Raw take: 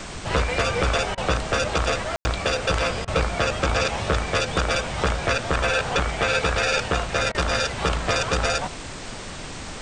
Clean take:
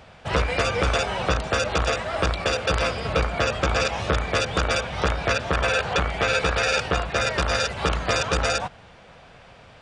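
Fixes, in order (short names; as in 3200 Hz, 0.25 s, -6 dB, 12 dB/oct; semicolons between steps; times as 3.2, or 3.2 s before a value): room tone fill 2.16–2.25; interpolate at 1.15/3.05/7.32, 25 ms; noise print and reduce 13 dB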